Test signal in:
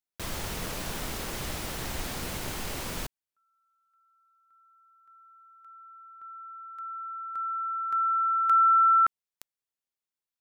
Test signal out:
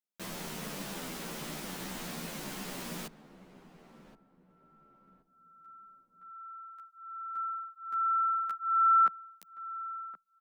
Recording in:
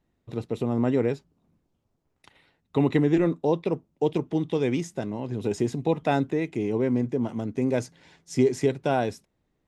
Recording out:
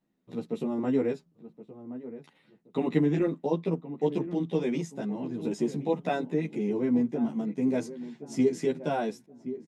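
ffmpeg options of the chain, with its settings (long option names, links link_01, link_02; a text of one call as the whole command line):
ffmpeg -i in.wav -filter_complex "[0:a]lowshelf=frequency=130:width_type=q:width=3:gain=-10.5,asplit=2[link_01][link_02];[link_02]adelay=1073,lowpass=frequency=1100:poles=1,volume=-13dB,asplit=2[link_03][link_04];[link_04]adelay=1073,lowpass=frequency=1100:poles=1,volume=0.32,asplit=2[link_05][link_06];[link_06]adelay=1073,lowpass=frequency=1100:poles=1,volume=0.32[link_07];[link_03][link_05][link_07]amix=inputs=3:normalize=0[link_08];[link_01][link_08]amix=inputs=2:normalize=0,asplit=2[link_09][link_10];[link_10]adelay=11.6,afreqshift=-1.2[link_11];[link_09][link_11]amix=inputs=2:normalize=1,volume=-2.5dB" out.wav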